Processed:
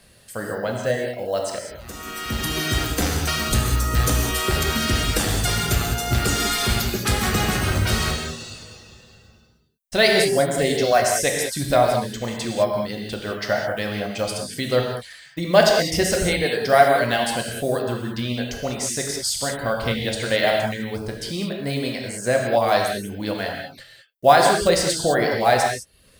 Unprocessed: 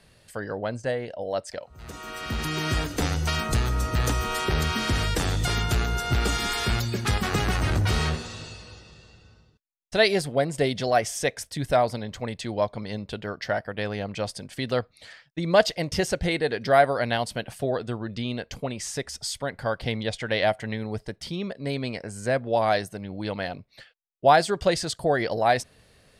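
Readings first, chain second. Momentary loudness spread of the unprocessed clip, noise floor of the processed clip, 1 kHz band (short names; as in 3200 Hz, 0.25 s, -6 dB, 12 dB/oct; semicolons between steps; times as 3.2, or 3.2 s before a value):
13 LU, -53 dBFS, +4.5 dB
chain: block floating point 7-bit; reverb removal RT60 0.69 s; high shelf 8300 Hz +11 dB; notch 910 Hz, Q 13; non-linear reverb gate 0.23 s flat, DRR 0 dB; gain +2.5 dB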